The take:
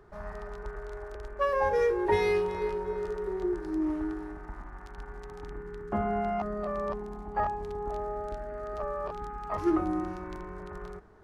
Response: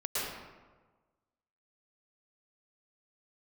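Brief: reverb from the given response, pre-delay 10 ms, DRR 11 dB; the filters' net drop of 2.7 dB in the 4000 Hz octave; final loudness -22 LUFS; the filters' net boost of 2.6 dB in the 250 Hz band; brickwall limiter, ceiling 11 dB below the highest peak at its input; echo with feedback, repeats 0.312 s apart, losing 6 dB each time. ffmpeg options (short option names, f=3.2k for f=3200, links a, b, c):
-filter_complex "[0:a]equalizer=f=250:t=o:g=4,equalizer=f=4k:t=o:g=-3.5,alimiter=limit=-24dB:level=0:latency=1,aecho=1:1:312|624|936|1248|1560|1872:0.501|0.251|0.125|0.0626|0.0313|0.0157,asplit=2[a][b];[1:a]atrim=start_sample=2205,adelay=10[c];[b][c]afir=irnorm=-1:irlink=0,volume=-18dB[d];[a][d]amix=inputs=2:normalize=0,volume=11dB"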